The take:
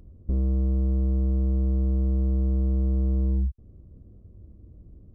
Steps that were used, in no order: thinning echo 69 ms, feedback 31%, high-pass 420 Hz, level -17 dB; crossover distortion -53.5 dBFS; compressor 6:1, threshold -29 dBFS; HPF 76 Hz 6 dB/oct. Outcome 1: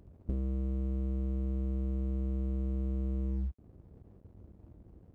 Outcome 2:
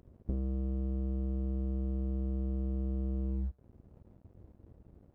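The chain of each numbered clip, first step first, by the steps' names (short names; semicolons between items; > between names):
thinning echo > crossover distortion > HPF > compressor; HPF > compressor > crossover distortion > thinning echo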